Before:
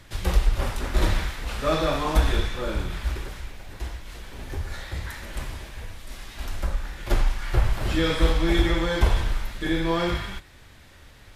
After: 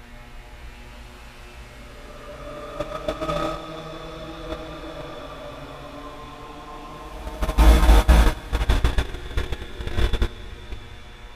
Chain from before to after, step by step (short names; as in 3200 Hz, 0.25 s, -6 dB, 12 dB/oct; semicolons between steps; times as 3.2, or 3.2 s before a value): buzz 120 Hz, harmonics 25, -36 dBFS -3 dB/oct; AGC gain up to 16 dB; Paulstretch 10×, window 0.25 s, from 1.39; Schroeder reverb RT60 0.98 s, DRR 9.5 dB; gate -10 dBFS, range -17 dB; gain -3.5 dB